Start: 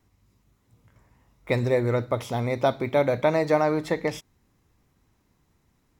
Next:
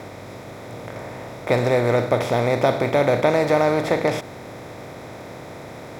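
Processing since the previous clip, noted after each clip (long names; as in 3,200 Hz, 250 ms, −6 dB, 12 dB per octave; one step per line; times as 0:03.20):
compressor on every frequency bin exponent 0.4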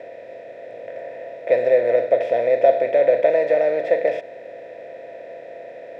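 formant filter e
hollow resonant body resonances 680/970 Hz, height 16 dB, ringing for 95 ms
level +6.5 dB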